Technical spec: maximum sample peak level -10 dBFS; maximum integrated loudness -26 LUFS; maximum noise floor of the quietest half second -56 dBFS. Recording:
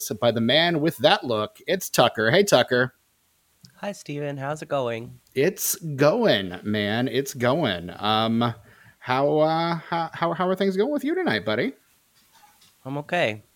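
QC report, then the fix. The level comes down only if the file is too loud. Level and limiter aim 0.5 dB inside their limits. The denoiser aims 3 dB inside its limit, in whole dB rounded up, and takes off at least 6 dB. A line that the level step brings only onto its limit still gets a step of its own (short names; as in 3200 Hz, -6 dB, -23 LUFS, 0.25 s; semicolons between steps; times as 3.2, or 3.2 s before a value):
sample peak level -1.5 dBFS: fail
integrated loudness -23.0 LUFS: fail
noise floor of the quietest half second -66 dBFS: OK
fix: gain -3.5 dB; limiter -10.5 dBFS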